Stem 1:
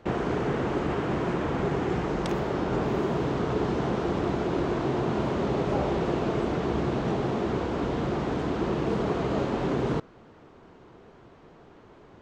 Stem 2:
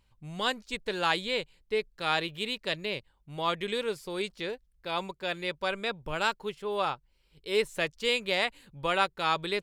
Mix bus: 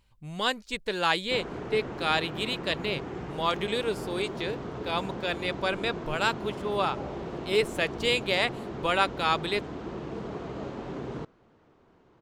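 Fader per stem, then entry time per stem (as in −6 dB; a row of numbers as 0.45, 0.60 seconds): −9.5, +2.0 decibels; 1.25, 0.00 seconds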